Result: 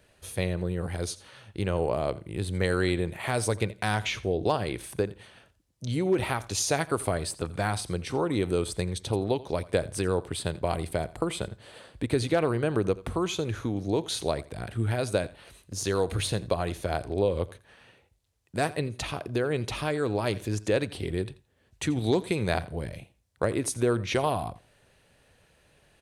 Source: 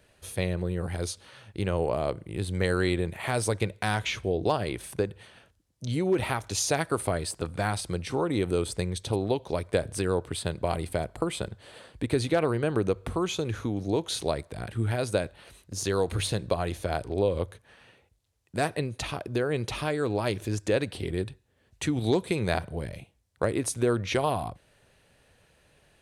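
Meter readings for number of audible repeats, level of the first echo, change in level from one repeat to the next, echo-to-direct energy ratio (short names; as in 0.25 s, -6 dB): 2, -19.0 dB, -16.0 dB, -19.0 dB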